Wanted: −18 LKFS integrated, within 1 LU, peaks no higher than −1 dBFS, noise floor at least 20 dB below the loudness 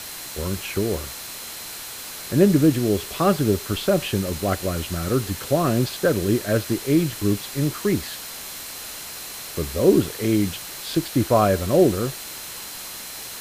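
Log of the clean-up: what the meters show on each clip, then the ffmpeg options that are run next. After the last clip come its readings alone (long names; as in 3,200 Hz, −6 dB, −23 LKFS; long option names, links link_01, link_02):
interfering tone 4,100 Hz; level of the tone −44 dBFS; background noise floor −36 dBFS; target noise floor −43 dBFS; integrated loudness −23.0 LKFS; sample peak −3.5 dBFS; target loudness −18.0 LKFS
→ -af "bandreject=frequency=4100:width=30"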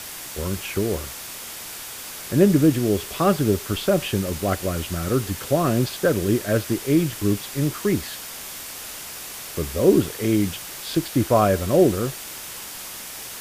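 interfering tone none found; background noise floor −36 dBFS; target noise floor −43 dBFS
→ -af "afftdn=noise_reduction=7:noise_floor=-36"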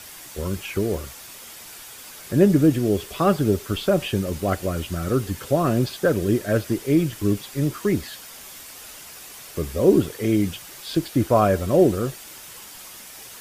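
background noise floor −41 dBFS; target noise floor −42 dBFS
→ -af "afftdn=noise_reduction=6:noise_floor=-41"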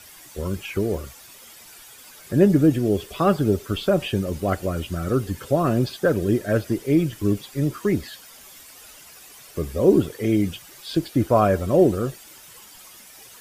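background noise floor −46 dBFS; integrated loudness −22.0 LKFS; sample peak −4.0 dBFS; target loudness −18.0 LKFS
→ -af "volume=4dB,alimiter=limit=-1dB:level=0:latency=1"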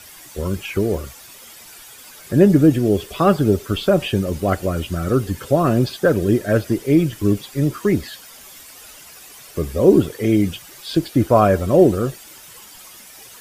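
integrated loudness −18.5 LKFS; sample peak −1.0 dBFS; background noise floor −42 dBFS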